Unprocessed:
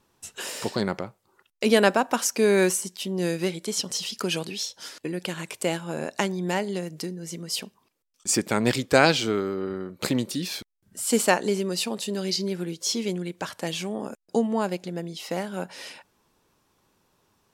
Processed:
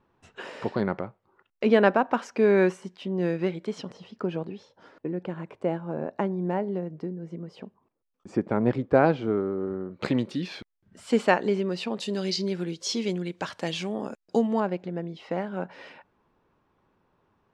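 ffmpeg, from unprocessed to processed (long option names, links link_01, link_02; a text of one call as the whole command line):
ffmpeg -i in.wav -af "asetnsamples=nb_out_samples=441:pad=0,asendcmd='3.92 lowpass f 1000;9.91 lowpass f 2600;12 lowpass f 5000;14.6 lowpass f 1900',lowpass=1900" out.wav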